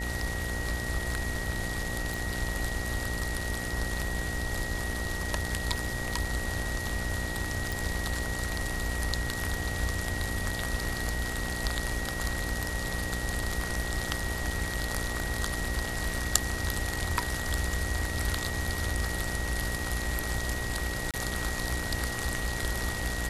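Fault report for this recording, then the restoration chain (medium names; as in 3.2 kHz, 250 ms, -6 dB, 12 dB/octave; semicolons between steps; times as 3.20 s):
buzz 60 Hz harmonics 15 -37 dBFS
whine 1.9 kHz -36 dBFS
2.14 s: pop
7.72 s: pop
21.11–21.14 s: dropout 27 ms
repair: de-click; de-hum 60 Hz, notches 15; band-stop 1.9 kHz, Q 30; interpolate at 21.11 s, 27 ms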